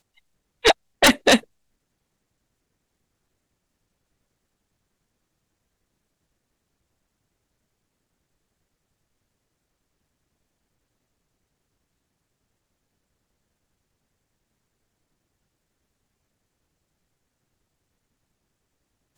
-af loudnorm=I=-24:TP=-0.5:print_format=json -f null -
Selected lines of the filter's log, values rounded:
"input_i" : "-18.4",
"input_tp" : "-8.3",
"input_lra" : "1.3",
"input_thresh" : "-29.4",